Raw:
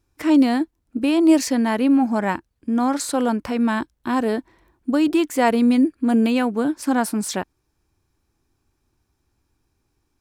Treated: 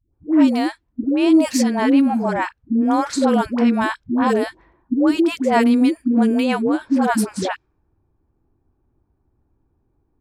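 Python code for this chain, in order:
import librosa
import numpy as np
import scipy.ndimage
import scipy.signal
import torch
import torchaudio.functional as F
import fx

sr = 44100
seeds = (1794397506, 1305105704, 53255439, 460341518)

y = fx.rider(x, sr, range_db=3, speed_s=2.0)
y = fx.env_lowpass(y, sr, base_hz=800.0, full_db=-14.0)
y = fx.dispersion(y, sr, late='highs', ms=135.0, hz=440.0)
y = y * librosa.db_to_amplitude(2.0)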